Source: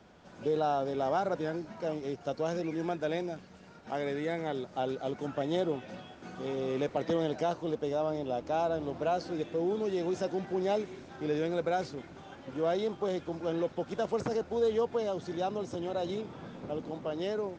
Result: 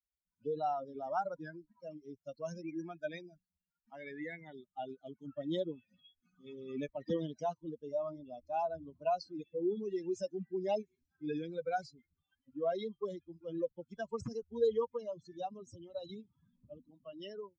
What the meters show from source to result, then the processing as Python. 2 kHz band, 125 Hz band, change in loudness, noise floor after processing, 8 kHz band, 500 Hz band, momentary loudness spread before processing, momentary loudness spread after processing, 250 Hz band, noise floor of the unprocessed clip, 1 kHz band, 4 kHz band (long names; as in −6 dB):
−8.0 dB, −9.5 dB, −6.0 dB, below −85 dBFS, can't be measured, −6.5 dB, 9 LU, 14 LU, −7.5 dB, −52 dBFS, −5.5 dB, −8.5 dB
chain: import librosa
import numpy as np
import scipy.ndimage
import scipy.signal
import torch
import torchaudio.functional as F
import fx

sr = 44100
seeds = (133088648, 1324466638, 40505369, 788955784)

y = fx.bin_expand(x, sr, power=3.0)
y = y * 10.0 ** (1.5 / 20.0)